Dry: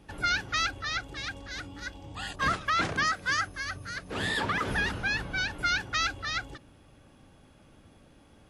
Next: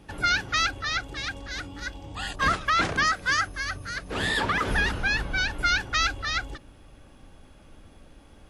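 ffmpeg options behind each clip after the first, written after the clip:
ffmpeg -i in.wav -af "asubboost=boost=3.5:cutoff=57,volume=4dB" out.wav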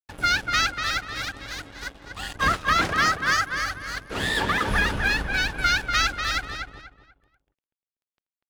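ffmpeg -i in.wav -filter_complex "[0:a]aeval=exprs='sgn(val(0))*max(abs(val(0))-0.0112,0)':channel_layout=same,asplit=2[link_01][link_02];[link_02]adelay=243,lowpass=frequency=3200:poles=1,volume=-5dB,asplit=2[link_03][link_04];[link_04]adelay=243,lowpass=frequency=3200:poles=1,volume=0.3,asplit=2[link_05][link_06];[link_06]adelay=243,lowpass=frequency=3200:poles=1,volume=0.3,asplit=2[link_07][link_08];[link_08]adelay=243,lowpass=frequency=3200:poles=1,volume=0.3[link_09];[link_01][link_03][link_05][link_07][link_09]amix=inputs=5:normalize=0,volume=2.5dB" out.wav

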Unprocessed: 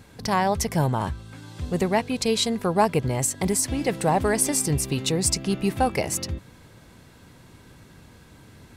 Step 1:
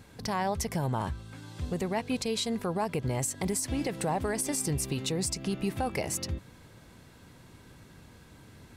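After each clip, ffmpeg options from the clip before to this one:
ffmpeg -i in.wav -af "alimiter=limit=-17dB:level=0:latency=1:release=118,volume=-3.5dB" out.wav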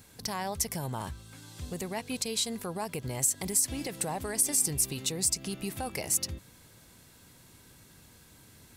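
ffmpeg -i in.wav -af "crystalizer=i=3:c=0,volume=-5.5dB" out.wav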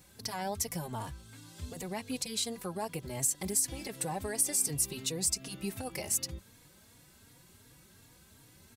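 ffmpeg -i in.wav -filter_complex "[0:a]asplit=2[link_01][link_02];[link_02]adelay=3.6,afreqshift=2.7[link_03];[link_01][link_03]amix=inputs=2:normalize=1" out.wav

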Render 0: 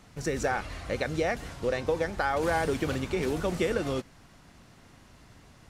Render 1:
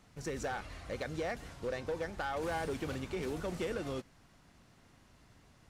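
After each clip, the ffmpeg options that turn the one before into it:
ffmpeg -i in.wav -af "asoftclip=type=hard:threshold=-23dB,volume=-8dB" out.wav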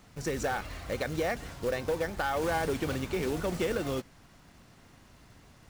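ffmpeg -i in.wav -af "acrusher=bits=4:mode=log:mix=0:aa=0.000001,volume=6dB" out.wav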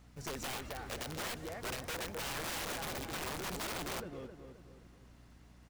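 ffmpeg -i in.wav -filter_complex "[0:a]asplit=2[link_01][link_02];[link_02]adelay=263,lowpass=frequency=2400:poles=1,volume=-6dB,asplit=2[link_03][link_04];[link_04]adelay=263,lowpass=frequency=2400:poles=1,volume=0.43,asplit=2[link_05][link_06];[link_06]adelay=263,lowpass=frequency=2400:poles=1,volume=0.43,asplit=2[link_07][link_08];[link_08]adelay=263,lowpass=frequency=2400:poles=1,volume=0.43,asplit=2[link_09][link_10];[link_10]adelay=263,lowpass=frequency=2400:poles=1,volume=0.43[link_11];[link_01][link_03][link_05][link_07][link_09][link_11]amix=inputs=6:normalize=0,aeval=exprs='(mod(21.1*val(0)+1,2)-1)/21.1':channel_layout=same,aeval=exprs='val(0)+0.00282*(sin(2*PI*60*n/s)+sin(2*PI*2*60*n/s)/2+sin(2*PI*3*60*n/s)/3+sin(2*PI*4*60*n/s)/4+sin(2*PI*5*60*n/s)/5)':channel_layout=same,volume=-8dB" out.wav

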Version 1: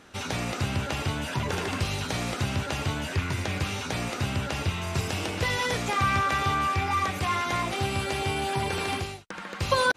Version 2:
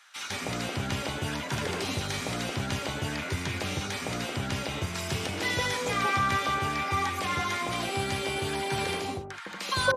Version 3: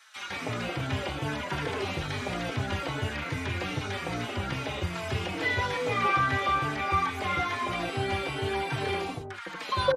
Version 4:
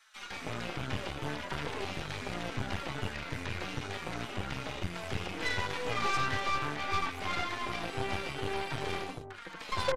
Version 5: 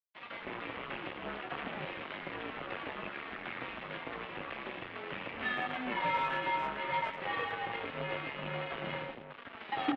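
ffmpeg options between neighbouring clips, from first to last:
ffmpeg -i in.wav -filter_complex "[0:a]lowshelf=frequency=89:gain=-11.5,bandreject=frequency=2700:width=20,acrossover=split=1000[link_01][link_02];[link_01]adelay=160[link_03];[link_03][link_02]amix=inputs=2:normalize=0" out.wav
ffmpeg -i in.wav -filter_complex "[0:a]acrossover=split=3500[link_01][link_02];[link_02]acompressor=threshold=-51dB:ratio=4:attack=1:release=60[link_03];[link_01][link_03]amix=inputs=2:normalize=0,equalizer=frequency=210:width=7.9:gain=-9,asplit=2[link_04][link_05];[link_05]adelay=4,afreqshift=-2.4[link_06];[link_04][link_06]amix=inputs=2:normalize=1,volume=4dB" out.wav
ffmpeg -i in.wav -af "aeval=exprs='0.282*(cos(1*acos(clip(val(0)/0.282,-1,1)))-cos(1*PI/2))+0.0447*(cos(6*acos(clip(val(0)/0.282,-1,1)))-cos(6*PI/2))+0.0794*(cos(8*acos(clip(val(0)/0.282,-1,1)))-cos(8*PI/2))':channel_layout=same,volume=-7dB" out.wav
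ffmpeg -i in.wav -filter_complex "[0:a]acrusher=bits=6:mix=0:aa=0.5,highpass=frequency=440:width_type=q:width=0.5412,highpass=frequency=440:width_type=q:width=1.307,lowpass=frequency=3400:width_type=q:width=0.5176,lowpass=frequency=3400:width_type=q:width=0.7071,lowpass=frequency=3400:width_type=q:width=1.932,afreqshift=-240,asplit=2[link_01][link_02];[link_02]adelay=110,highpass=300,lowpass=3400,asoftclip=type=hard:threshold=-27.5dB,volume=-13dB[link_03];[link_01][link_03]amix=inputs=2:normalize=0" out.wav

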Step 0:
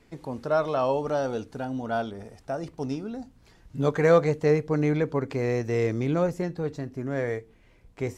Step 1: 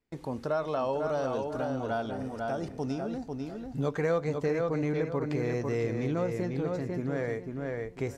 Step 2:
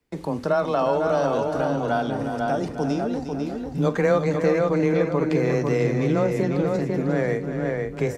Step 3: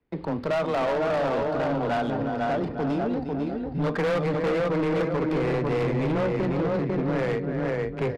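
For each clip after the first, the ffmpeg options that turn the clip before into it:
ffmpeg -i in.wav -filter_complex "[0:a]asplit=2[link_01][link_02];[link_02]adelay=496,lowpass=frequency=4100:poles=1,volume=-5.5dB,asplit=2[link_03][link_04];[link_04]adelay=496,lowpass=frequency=4100:poles=1,volume=0.26,asplit=2[link_05][link_06];[link_06]adelay=496,lowpass=frequency=4100:poles=1,volume=0.26[link_07];[link_01][link_03][link_05][link_07]amix=inputs=4:normalize=0,agate=range=-24dB:threshold=-51dB:ratio=16:detection=peak,acompressor=threshold=-29dB:ratio=2.5" out.wav
ffmpeg -i in.wav -af "afreqshift=15,aecho=1:1:45|355:0.178|0.335,volume=8dB" out.wav
ffmpeg -i in.wav -af "aresample=11025,asoftclip=type=hard:threshold=-21.5dB,aresample=44100,adynamicsmooth=sensitivity=6:basefreq=2600" out.wav

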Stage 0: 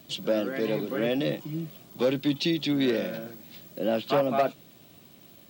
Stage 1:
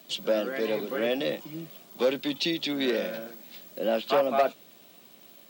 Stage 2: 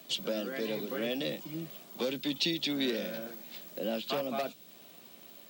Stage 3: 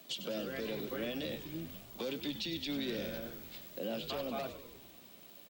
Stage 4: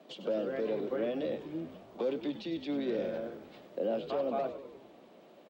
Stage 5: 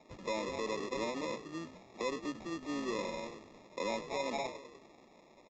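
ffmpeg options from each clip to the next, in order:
ffmpeg -i in.wav -af "highpass=frequency=210:width=0.5412,highpass=frequency=210:width=1.3066,equalizer=frequency=290:width=2.2:gain=-6.5,volume=1.5dB" out.wav
ffmpeg -i in.wav -filter_complex "[0:a]acrossover=split=260|3000[link_01][link_02][link_03];[link_02]acompressor=threshold=-39dB:ratio=2.5[link_04];[link_01][link_04][link_03]amix=inputs=3:normalize=0" out.wav
ffmpeg -i in.wav -filter_complex "[0:a]alimiter=level_in=1.5dB:limit=-24dB:level=0:latency=1:release=37,volume=-1.5dB,asplit=2[link_01][link_02];[link_02]asplit=7[link_03][link_04][link_05][link_06][link_07][link_08][link_09];[link_03]adelay=98,afreqshift=-71,volume=-11.5dB[link_10];[link_04]adelay=196,afreqshift=-142,volume=-15.7dB[link_11];[link_05]adelay=294,afreqshift=-213,volume=-19.8dB[link_12];[link_06]adelay=392,afreqshift=-284,volume=-24dB[link_13];[link_07]adelay=490,afreqshift=-355,volume=-28.1dB[link_14];[link_08]adelay=588,afreqshift=-426,volume=-32.3dB[link_15];[link_09]adelay=686,afreqshift=-497,volume=-36.4dB[link_16];[link_10][link_11][link_12][link_13][link_14][link_15][link_16]amix=inputs=7:normalize=0[link_17];[link_01][link_17]amix=inputs=2:normalize=0,volume=-3.5dB" out.wav
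ffmpeg -i in.wav -af "bandpass=frequency=520:width_type=q:width=0.96:csg=0,volume=8dB" out.wav
ffmpeg -i in.wav -af "acrusher=samples=29:mix=1:aa=0.000001,aresample=16000,aresample=44100,volume=-4dB" out.wav

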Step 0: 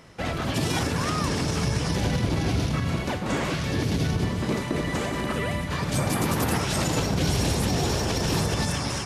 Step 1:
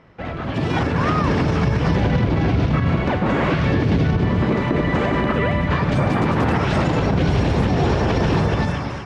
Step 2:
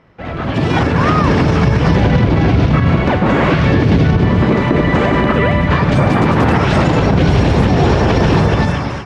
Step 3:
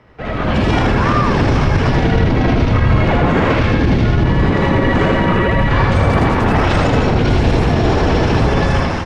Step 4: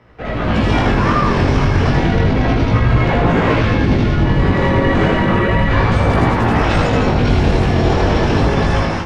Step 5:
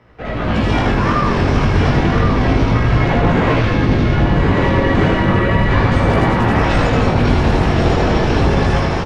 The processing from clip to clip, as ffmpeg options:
ffmpeg -i in.wav -af "lowpass=2300,dynaudnorm=framelen=230:gausssize=7:maxgain=12dB,alimiter=limit=-9.5dB:level=0:latency=1:release=139" out.wav
ffmpeg -i in.wav -af "dynaudnorm=framelen=200:gausssize=3:maxgain=8dB" out.wav
ffmpeg -i in.wav -af "alimiter=limit=-9.5dB:level=0:latency=1:release=13,afreqshift=-42,aecho=1:1:79:0.668,volume=2dB" out.wav
ffmpeg -i in.wav -af "flanger=delay=17:depth=5.2:speed=0.32,volume=2.5dB" out.wav
ffmpeg -i in.wav -af "aecho=1:1:1068:0.501,volume=-1dB" out.wav

